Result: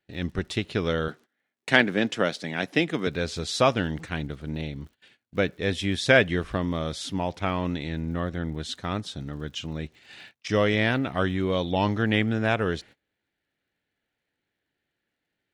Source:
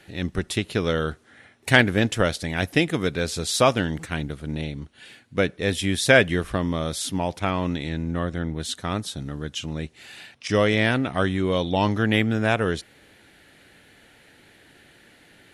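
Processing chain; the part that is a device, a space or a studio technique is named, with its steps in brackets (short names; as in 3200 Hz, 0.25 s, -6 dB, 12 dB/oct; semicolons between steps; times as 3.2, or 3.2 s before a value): 1.08–3.07 HPF 160 Hz 24 dB/oct; lo-fi chain (LPF 5800 Hz 12 dB/oct; wow and flutter 26 cents; crackle 76/s -45 dBFS); gate -44 dBFS, range -26 dB; gain -2.5 dB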